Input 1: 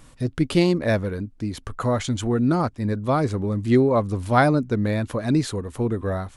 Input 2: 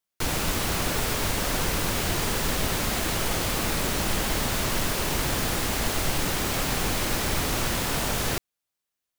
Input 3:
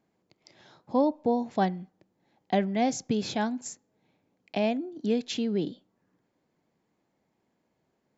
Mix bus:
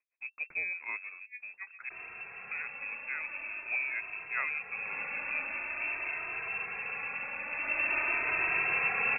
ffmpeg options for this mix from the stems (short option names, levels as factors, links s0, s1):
-filter_complex "[0:a]aeval=exprs='sgn(val(0))*max(abs(val(0))-0.0133,0)':c=same,agate=range=0.355:threshold=0.0251:ratio=16:detection=peak,volume=0.15,asplit=3[s0][s1][s2];[s0]atrim=end=1.89,asetpts=PTS-STARTPTS,afade=t=out:st=1.886:d=0.004:c=hsin[s3];[s1]atrim=start=1.89:end=2.51,asetpts=PTS-STARTPTS,volume=0[s4];[s2]atrim=start=2.51,asetpts=PTS-STARTPTS,afade=t=in:d=0.004:c=hsin[s5];[s3][s4][s5]concat=n=3:v=0:a=1,asplit=2[s6][s7];[1:a]asplit=2[s8][s9];[s9]adelay=3,afreqshift=-0.46[s10];[s8][s10]amix=inputs=2:normalize=1,adelay=1700,afade=t=in:st=4.67:d=0.34:silence=0.421697,afade=t=in:st=7.48:d=0.5:silence=0.421697[s11];[2:a]bandreject=f=55.58:t=h:w=4,bandreject=f=111.16:t=h:w=4,bandreject=f=166.74:t=h:w=4,bandreject=f=222.32:t=h:w=4,bandreject=f=277.9:t=h:w=4,bandreject=f=333.48:t=h:w=4,bandreject=f=389.06:t=h:w=4,bandreject=f=444.64:t=h:w=4,bandreject=f=500.22:t=h:w=4,bandreject=f=555.8:t=h:w=4,bandreject=f=611.38:t=h:w=4,bandreject=f=666.96:t=h:w=4,bandreject=f=722.54:t=h:w=4,bandreject=f=778.12:t=h:w=4,bandreject=f=833.7:t=h:w=4,bandreject=f=889.28:t=h:w=4,bandreject=f=944.86:t=h:w=4,bandreject=f=1000.44:t=h:w=4,bandreject=f=1056.02:t=h:w=4,bandreject=f=1111.6:t=h:w=4,bandreject=f=1167.18:t=h:w=4,bandreject=f=1222.76:t=h:w=4,bandreject=f=1278.34:t=h:w=4,bandreject=f=1333.92:t=h:w=4,bandreject=f=1389.5:t=h:w=4,bandreject=f=1445.08:t=h:w=4,bandreject=f=1500.66:t=h:w=4,bandreject=f=1556.24:t=h:w=4,bandreject=f=1611.82:t=h:w=4,aeval=exprs='val(0)*pow(10,-26*(0.5-0.5*cos(2*PI*7.4*n/s))/20)':c=same,volume=0.299[s12];[s7]apad=whole_len=360676[s13];[s12][s13]sidechaincompress=threshold=0.00251:ratio=8:attack=23:release=400[s14];[s6][s11][s14]amix=inputs=3:normalize=0,lowpass=f=2300:t=q:w=0.5098,lowpass=f=2300:t=q:w=0.6013,lowpass=f=2300:t=q:w=0.9,lowpass=f=2300:t=q:w=2.563,afreqshift=-2700"